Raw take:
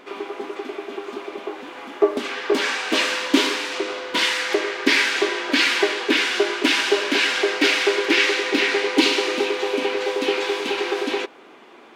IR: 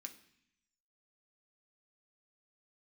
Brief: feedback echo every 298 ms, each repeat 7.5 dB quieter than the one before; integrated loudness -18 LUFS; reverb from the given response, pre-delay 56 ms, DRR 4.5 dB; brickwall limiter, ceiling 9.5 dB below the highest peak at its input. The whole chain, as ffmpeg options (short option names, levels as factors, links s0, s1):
-filter_complex "[0:a]alimiter=limit=0.251:level=0:latency=1,aecho=1:1:298|596|894|1192|1490:0.422|0.177|0.0744|0.0312|0.0131,asplit=2[s0][s1];[1:a]atrim=start_sample=2205,adelay=56[s2];[s1][s2]afir=irnorm=-1:irlink=0,volume=1.12[s3];[s0][s3]amix=inputs=2:normalize=0,volume=1.33"